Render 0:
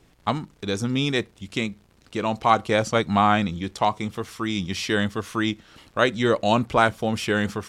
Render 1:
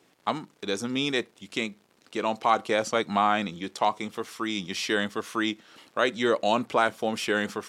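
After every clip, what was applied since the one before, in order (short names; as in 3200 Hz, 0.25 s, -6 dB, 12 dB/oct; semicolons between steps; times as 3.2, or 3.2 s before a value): HPF 260 Hz 12 dB/oct; in parallel at +1 dB: limiter -11.5 dBFS, peak gain reduction 9 dB; on the sum: gain -8 dB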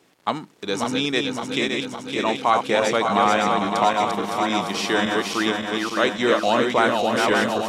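regenerating reverse delay 0.281 s, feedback 77%, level -3.5 dB; gain +3.5 dB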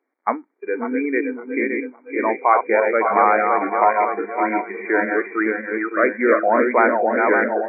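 brick-wall FIR band-pass 220–2400 Hz; spectral noise reduction 19 dB; gain +3.5 dB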